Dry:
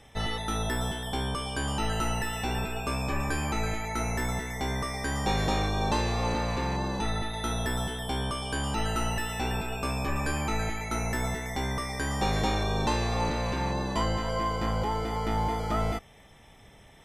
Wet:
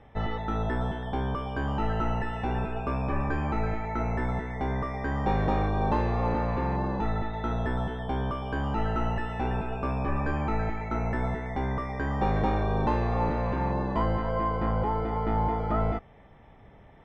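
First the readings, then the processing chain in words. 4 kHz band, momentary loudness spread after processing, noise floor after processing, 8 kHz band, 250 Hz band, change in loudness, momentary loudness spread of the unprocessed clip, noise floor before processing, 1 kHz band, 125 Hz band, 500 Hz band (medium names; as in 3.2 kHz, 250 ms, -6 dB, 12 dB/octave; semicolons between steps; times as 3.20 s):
-13.0 dB, 5 LU, -53 dBFS, under -25 dB, +2.0 dB, +0.5 dB, 4 LU, -54 dBFS, +1.5 dB, +2.0 dB, +2.0 dB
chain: low-pass 1.5 kHz 12 dB/octave; trim +2 dB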